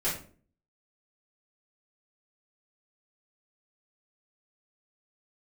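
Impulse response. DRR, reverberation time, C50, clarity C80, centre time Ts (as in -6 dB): -10.5 dB, 0.45 s, 5.0 dB, 11.0 dB, 33 ms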